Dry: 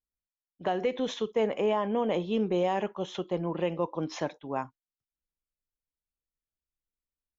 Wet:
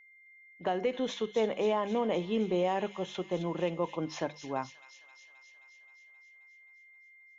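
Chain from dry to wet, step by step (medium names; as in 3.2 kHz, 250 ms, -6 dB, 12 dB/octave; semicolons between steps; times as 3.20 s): hum notches 50/100/150/200 Hz; whistle 2.1 kHz -54 dBFS; feedback echo behind a high-pass 264 ms, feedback 68%, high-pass 3 kHz, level -6 dB; trim -2 dB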